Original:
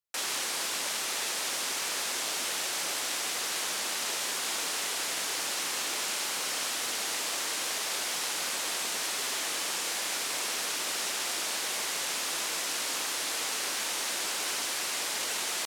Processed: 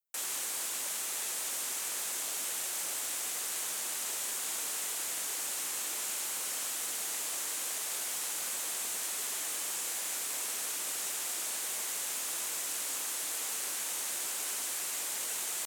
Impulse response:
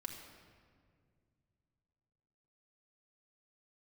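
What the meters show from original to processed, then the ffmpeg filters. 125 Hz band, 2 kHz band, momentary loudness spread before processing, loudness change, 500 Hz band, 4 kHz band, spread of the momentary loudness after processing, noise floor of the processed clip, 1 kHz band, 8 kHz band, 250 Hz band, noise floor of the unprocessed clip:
can't be measured, −8.5 dB, 0 LU, −3.0 dB, −8.5 dB, −8.5 dB, 0 LU, −37 dBFS, −8.5 dB, −1.0 dB, −8.5 dB, −33 dBFS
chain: -af "aexciter=amount=3.3:drive=4.1:freq=6800,volume=-8.5dB"

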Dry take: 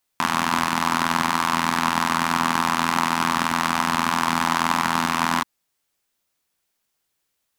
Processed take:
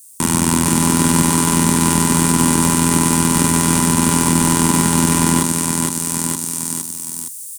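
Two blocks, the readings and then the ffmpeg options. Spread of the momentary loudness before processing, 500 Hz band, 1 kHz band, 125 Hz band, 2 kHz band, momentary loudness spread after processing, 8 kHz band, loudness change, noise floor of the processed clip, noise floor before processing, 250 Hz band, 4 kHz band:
1 LU, +10.5 dB, −0.5 dB, +16.5 dB, −1.5 dB, 7 LU, +18.0 dB, +6.5 dB, −32 dBFS, −76 dBFS, +13.0 dB, +3.5 dB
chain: -filter_complex "[0:a]highpass=92,aecho=1:1:2.1:0.39,aecho=1:1:463|926|1389|1852:0.376|0.128|0.0434|0.0148,acrossover=split=2200[link_01][link_02];[link_01]crystalizer=i=4.5:c=0[link_03];[link_03][link_02]amix=inputs=2:normalize=0,dynaudnorm=framelen=240:gausssize=5:maxgain=11dB,bass=frequency=250:gain=2,treble=frequency=4000:gain=9,asplit=2[link_04][link_05];[link_05]aeval=exprs='(mod(2.66*val(0)+1,2)-1)/2.66':channel_layout=same,volume=-12dB[link_06];[link_04][link_06]amix=inputs=2:normalize=0,bandreject=frequency=690:width=20,acrossover=split=3100[link_07][link_08];[link_08]acompressor=threshold=-34dB:ratio=4:attack=1:release=60[link_09];[link_07][link_09]amix=inputs=2:normalize=0,firequalizer=gain_entry='entry(340,0);entry(740,-17);entry(1300,-22);entry(8700,14);entry(13000,4)':delay=0.05:min_phase=1,alimiter=level_in=16dB:limit=-1dB:release=50:level=0:latency=1,volume=-1dB"

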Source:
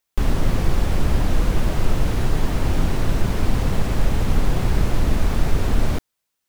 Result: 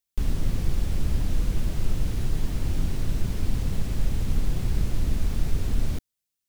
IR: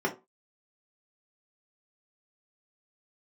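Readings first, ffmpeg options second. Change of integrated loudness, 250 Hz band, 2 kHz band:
−6.5 dB, −8.0 dB, −12.0 dB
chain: -af "equalizer=frequency=920:width=0.41:gain=-10.5,volume=-5dB"

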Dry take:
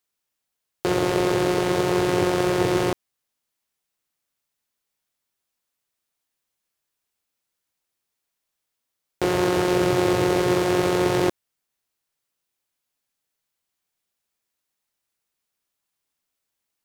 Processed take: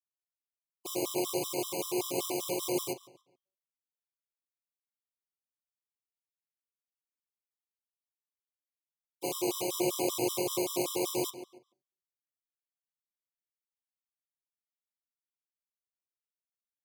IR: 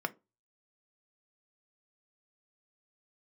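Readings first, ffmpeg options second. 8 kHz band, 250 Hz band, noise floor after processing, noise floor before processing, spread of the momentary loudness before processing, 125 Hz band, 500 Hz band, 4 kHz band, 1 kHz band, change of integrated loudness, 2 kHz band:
−0.5 dB, −12.5 dB, below −85 dBFS, −82 dBFS, 5 LU, −19.5 dB, −12.5 dB, −7.0 dB, −14.0 dB, −11.0 dB, −17.0 dB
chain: -filter_complex "[0:a]aeval=exprs='(tanh(4.47*val(0)+0.6)-tanh(0.6))/4.47':channel_layout=same,agate=range=-33dB:threshold=-21dB:ratio=3:detection=peak,asuperstop=centerf=1600:order=20:qfactor=1.7,crystalizer=i=5.5:c=0,flanger=delay=7:depth=2.5:regen=-38:speed=1.4:shape=triangular,highpass=frequency=140:width=0.5412,highpass=frequency=140:width=1.3066,asplit=2[link_01][link_02];[link_02]adelay=141,lowpass=frequency=4900:poles=1,volume=-15dB,asplit=2[link_03][link_04];[link_04]adelay=141,lowpass=frequency=4900:poles=1,volume=0.32,asplit=2[link_05][link_06];[link_06]adelay=141,lowpass=frequency=4900:poles=1,volume=0.32[link_07];[link_01][link_03][link_05][link_07]amix=inputs=4:normalize=0,acontrast=23,highshelf=frequency=6600:gain=3.5,bandreject=frequency=189.4:width_type=h:width=4,bandreject=frequency=378.8:width_type=h:width=4,bandreject=frequency=568.2:width_type=h:width=4,bandreject=frequency=757.6:width_type=h:width=4,bandreject=frequency=947:width_type=h:width=4,bandreject=frequency=1136.4:width_type=h:width=4,bandreject=frequency=1325.8:width_type=h:width=4,bandreject=frequency=1515.2:width_type=h:width=4,bandreject=frequency=1704.6:width_type=h:width=4,bandreject=frequency=1894:width_type=h:width=4,bandreject=frequency=2083.4:width_type=h:width=4,bandreject=frequency=2272.8:width_type=h:width=4,bandreject=frequency=2462.2:width_type=h:width=4,bandreject=frequency=2651.6:width_type=h:width=4,bandreject=frequency=2841:width_type=h:width=4,bandreject=frequency=3030.4:width_type=h:width=4,bandreject=frequency=3219.8:width_type=h:width=4,bandreject=frequency=3409.2:width_type=h:width=4,bandreject=frequency=3598.6:width_type=h:width=4,bandreject=frequency=3788:width_type=h:width=4,bandreject=frequency=3977.4:width_type=h:width=4,bandreject=frequency=4166.8:width_type=h:width=4,bandreject=frequency=4356.2:width_type=h:width=4,bandreject=frequency=4545.6:width_type=h:width=4,bandreject=frequency=4735:width_type=h:width=4,bandreject=frequency=4924.4:width_type=h:width=4,bandreject=frequency=5113.8:width_type=h:width=4,bandreject=frequency=5303.2:width_type=h:width=4,bandreject=frequency=5492.6:width_type=h:width=4,bandreject=frequency=5682:width_type=h:width=4,bandreject=frequency=5871.4:width_type=h:width=4,bandreject=frequency=6060.8:width_type=h:width=4,bandreject=frequency=6250.2:width_type=h:width=4,bandreject=frequency=6439.6:width_type=h:width=4,bandreject=frequency=6629:width_type=h:width=4,bandreject=frequency=6818.4:width_type=h:width=4,asplit=2[link_08][link_09];[1:a]atrim=start_sample=2205,asetrate=29988,aresample=44100[link_10];[link_09][link_10]afir=irnorm=-1:irlink=0,volume=-16dB[link_11];[link_08][link_11]amix=inputs=2:normalize=0,afftfilt=real='re*gt(sin(2*PI*5.2*pts/sr)*(1-2*mod(floor(b*sr/1024/1000),2)),0)':imag='im*gt(sin(2*PI*5.2*pts/sr)*(1-2*mod(floor(b*sr/1024/1000),2)),0)':win_size=1024:overlap=0.75,volume=-7.5dB"

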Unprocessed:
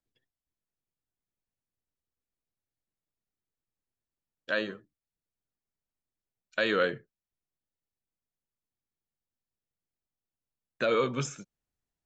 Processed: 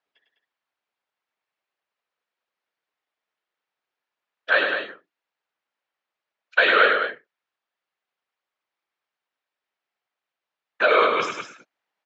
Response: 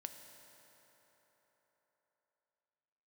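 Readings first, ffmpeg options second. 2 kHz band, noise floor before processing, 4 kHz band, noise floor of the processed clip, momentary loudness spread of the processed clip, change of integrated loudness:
+14.0 dB, below −85 dBFS, +10.5 dB, below −85 dBFS, 13 LU, +10.0 dB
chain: -af "aemphasis=mode=reproduction:type=cd,apsyclip=21dB,afftfilt=real='hypot(re,im)*cos(2*PI*random(0))':imag='hypot(re,im)*sin(2*PI*random(1))':win_size=512:overlap=0.75,highpass=780,lowpass=3500,aecho=1:1:102|204.1:0.501|0.398"

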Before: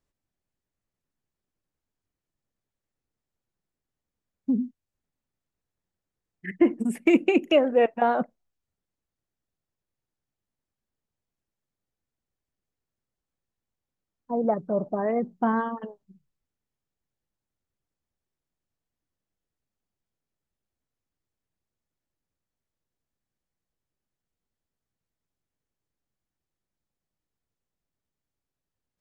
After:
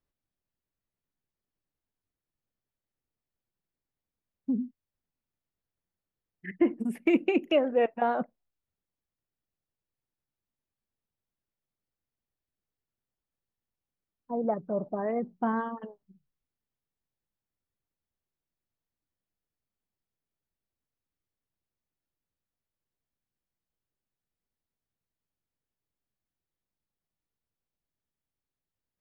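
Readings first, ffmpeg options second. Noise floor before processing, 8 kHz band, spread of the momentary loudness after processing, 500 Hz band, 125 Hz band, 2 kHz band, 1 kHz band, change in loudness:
below −85 dBFS, can't be measured, 16 LU, −4.5 dB, −4.5 dB, −5.0 dB, −4.5 dB, −4.5 dB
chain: -af "equalizer=frequency=7600:width=1.6:gain=-10.5,volume=-4.5dB"

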